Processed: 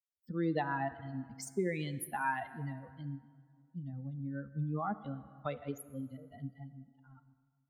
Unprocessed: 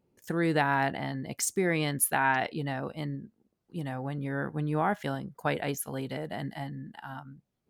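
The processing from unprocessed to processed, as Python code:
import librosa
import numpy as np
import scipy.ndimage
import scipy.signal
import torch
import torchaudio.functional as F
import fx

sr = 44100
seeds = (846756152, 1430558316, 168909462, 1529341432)

y = fx.bin_expand(x, sr, power=3.0)
y = fx.high_shelf(y, sr, hz=2100.0, db=-10.5)
y = fx.rev_plate(y, sr, seeds[0], rt60_s=1.6, hf_ratio=0.65, predelay_ms=0, drr_db=13.5)
y = fx.band_squash(y, sr, depth_pct=40)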